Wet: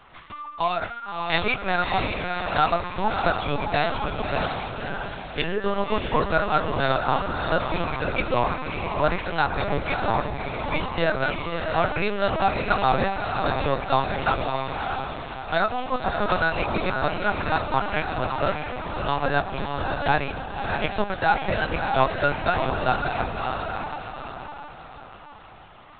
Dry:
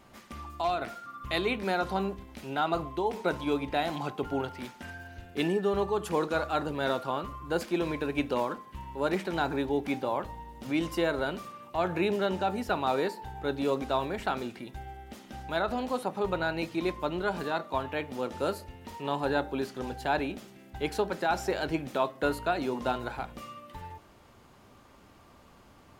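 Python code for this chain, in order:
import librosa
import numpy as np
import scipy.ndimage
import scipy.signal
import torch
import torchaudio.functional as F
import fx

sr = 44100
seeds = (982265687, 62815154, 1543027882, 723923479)

y = scipy.signal.sosfilt(scipy.signal.butter(2, 550.0, 'highpass', fs=sr, output='sos'), x)
y = fx.notch(y, sr, hz=710.0, q=17.0)
y = fx.echo_diffused(y, sr, ms=604, feedback_pct=44, wet_db=-4.0)
y = fx.lpc_vocoder(y, sr, seeds[0], excitation='pitch_kept', order=10)
y = fx.band_squash(y, sr, depth_pct=100, at=(16.29, 16.78))
y = F.gain(torch.from_numpy(y), 9.0).numpy()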